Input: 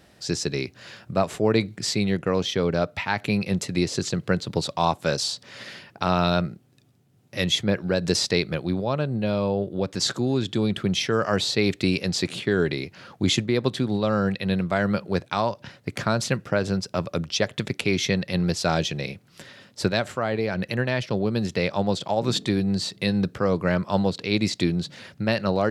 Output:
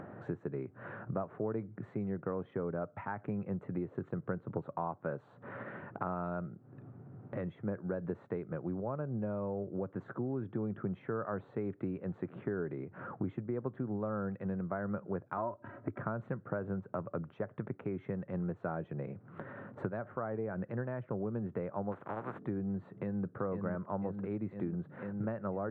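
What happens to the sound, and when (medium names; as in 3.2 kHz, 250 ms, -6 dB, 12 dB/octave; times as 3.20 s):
15.37–15.99 s: comb 3.1 ms, depth 85%
21.91–22.38 s: spectral contrast reduction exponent 0.27
22.89–23.35 s: echo throw 500 ms, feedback 70%, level -4.5 dB
whole clip: compression 4:1, threshold -36 dBFS; elliptic band-pass 100–1400 Hz, stop band 50 dB; upward compressor, threshold -40 dBFS; trim +1 dB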